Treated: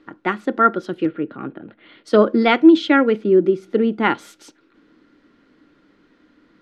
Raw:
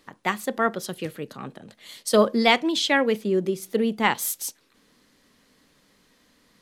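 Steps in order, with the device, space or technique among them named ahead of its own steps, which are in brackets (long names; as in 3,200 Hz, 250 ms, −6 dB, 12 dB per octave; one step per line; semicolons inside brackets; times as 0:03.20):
inside a cardboard box (low-pass filter 2,800 Hz 12 dB per octave; hollow resonant body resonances 320/1,400 Hz, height 15 dB, ringing for 45 ms)
0:01.06–0:02.04: low-pass filter 3,200 Hz 24 dB per octave
level +1.5 dB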